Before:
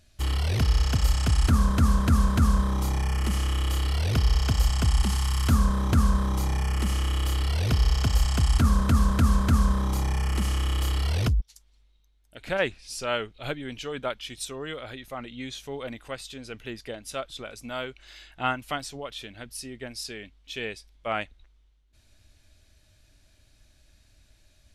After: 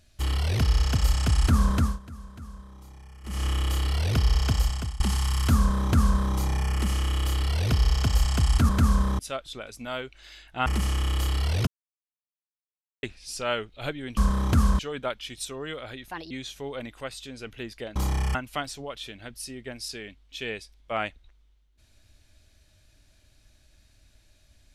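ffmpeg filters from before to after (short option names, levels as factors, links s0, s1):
-filter_complex "[0:a]asplit=15[s0][s1][s2][s3][s4][s5][s6][s7][s8][s9][s10][s11][s12][s13][s14];[s0]atrim=end=1.99,asetpts=PTS-STARTPTS,afade=t=out:st=1.76:d=0.23:silence=0.0891251[s15];[s1]atrim=start=1.99:end=3.23,asetpts=PTS-STARTPTS,volume=0.0891[s16];[s2]atrim=start=3.23:end=5,asetpts=PTS-STARTPTS,afade=t=in:d=0.23:silence=0.0891251,afade=t=out:st=1.31:d=0.46:silence=0.0891251[s17];[s3]atrim=start=5:end=8.692,asetpts=PTS-STARTPTS,afade=t=in:d=0.004:c=hsin:silence=0.0891251[s18];[s4]atrim=start=9.388:end=9.892[s19];[s5]atrim=start=17.028:end=18.502[s20];[s6]atrim=start=10.278:end=11.29,asetpts=PTS-STARTPTS,afade=t=out:st=1.008:d=0.004:c=hsin[s21];[s7]atrim=start=11.29:end=12.65,asetpts=PTS-STARTPTS,volume=0[s22];[s8]atrim=start=12.65:end=13.792,asetpts=PTS-STARTPTS,afade=t=in:d=0.004:c=hsin[s23];[s9]atrim=start=5.568:end=6.192[s24];[s10]atrim=start=13.788:end=15.114[s25];[s11]atrim=start=15.11:end=15.38,asetpts=PTS-STARTPTS,asetrate=60417,aresample=44100,atrim=end_sample=8691,asetpts=PTS-STARTPTS[s26];[s12]atrim=start=15.376:end=17.032[s27];[s13]atrim=start=9.888:end=10.282[s28];[s14]atrim=start=18.498[s29];[s15][s16][s17][s18]concat=n=4:v=0:a=1[s30];[s30][s19]acrossfade=d=0.004:c1=hsin:c2=hsin[s31];[s31][s20]acrossfade=d=0.004:c1=hsin:c2=hsin[s32];[s21][s22][s23]concat=n=3:v=0:a=1[s33];[s32][s33]acrossfade=d=0.004:c1=hsin:c2=hsin[s34];[s34][s24]acrossfade=d=0.004:c1=hsin:c2=hsin[s35];[s35][s25]acrossfade=d=0.004:c1=hsin:c2=hsin[s36];[s36][s26]acrossfade=d=0.004:c1=hsin:c2=hsin[s37];[s37][s27]acrossfade=d=0.004:c1=hsin:c2=hsin[s38];[s38][s28]acrossfade=d=0.004:c1=hsin:c2=hsin[s39];[s39][s29]acrossfade=d=0.004:c1=hsin:c2=hsin"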